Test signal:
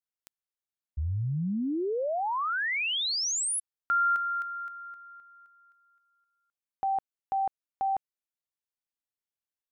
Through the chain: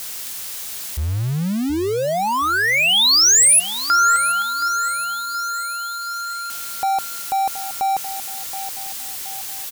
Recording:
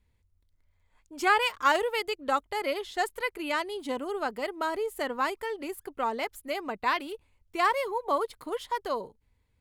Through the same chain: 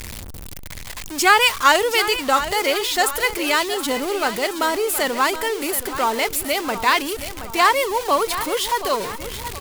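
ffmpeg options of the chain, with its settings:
-filter_complex "[0:a]aeval=exprs='val(0)+0.5*0.0168*sgn(val(0))':c=same,highshelf=f=2.6k:g=10,asplit=2[a][b];[b]aecho=0:1:723|1446|2169|2892|3615:0.251|0.116|0.0532|0.0244|0.0112[c];[a][c]amix=inputs=2:normalize=0,volume=6.5dB"

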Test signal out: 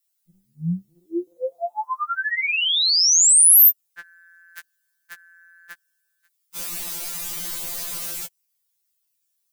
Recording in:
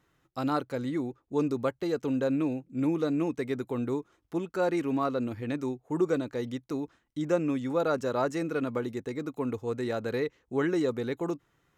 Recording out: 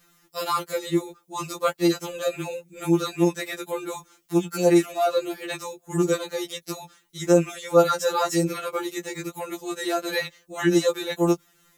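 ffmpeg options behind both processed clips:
-af "crystalizer=i=5.5:c=0,afftfilt=real='re*2.83*eq(mod(b,8),0)':imag='im*2.83*eq(mod(b,8),0)':win_size=2048:overlap=0.75,volume=6dB"

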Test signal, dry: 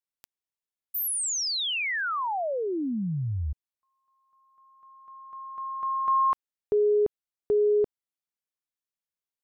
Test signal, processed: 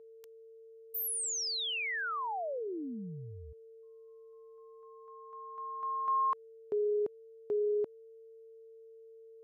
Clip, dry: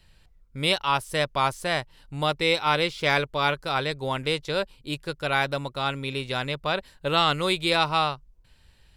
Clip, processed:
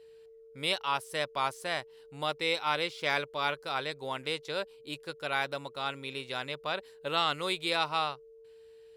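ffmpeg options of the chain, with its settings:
-af "aeval=exprs='val(0)+0.00708*sin(2*PI*450*n/s)':c=same,highpass=f=330:p=1,volume=-6.5dB"

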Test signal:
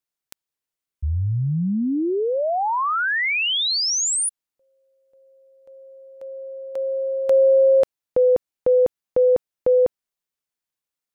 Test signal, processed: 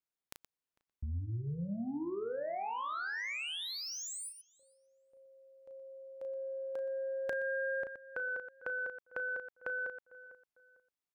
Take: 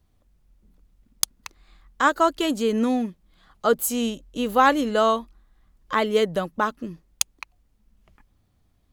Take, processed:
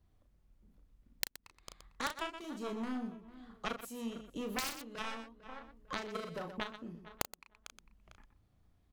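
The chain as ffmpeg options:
-filter_complex "[0:a]aeval=exprs='0.891*(cos(1*acos(clip(val(0)/0.891,-1,1)))-cos(1*PI/2))+0.316*(cos(3*acos(clip(val(0)/0.891,-1,1)))-cos(3*PI/2))':c=same,acontrast=21,asplit=2[a][b];[b]adelay=450,lowpass=f=1.9k:p=1,volume=-23.5dB,asplit=2[c][d];[d]adelay=450,lowpass=f=1.9k:p=1,volume=0.29[e];[c][e]amix=inputs=2:normalize=0[f];[a][f]amix=inputs=2:normalize=0,aeval=exprs='(mod(3.98*val(0)+1,2)-1)/3.98':c=same,asplit=2[g][h];[h]aecho=0:1:34.99|122.4:0.501|0.251[i];[g][i]amix=inputs=2:normalize=0,acompressor=threshold=-50dB:ratio=3:attack=6.1:release=640:knee=1:detection=peak,highshelf=f=3.7k:g=-6,volume=13dB"

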